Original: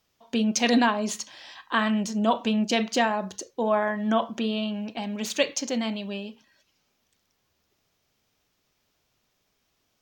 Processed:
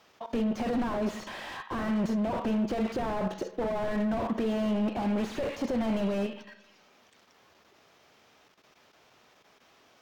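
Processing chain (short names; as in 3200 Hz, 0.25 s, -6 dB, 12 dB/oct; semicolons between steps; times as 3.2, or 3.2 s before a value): overdrive pedal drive 29 dB, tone 1200 Hz, clips at -8 dBFS; level quantiser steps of 12 dB; soft clip -19 dBFS, distortion -22 dB; on a send at -15 dB: reverb RT60 1.0 s, pre-delay 58 ms; on the sum: slew limiter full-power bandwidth 26 Hz; gain -1.5 dB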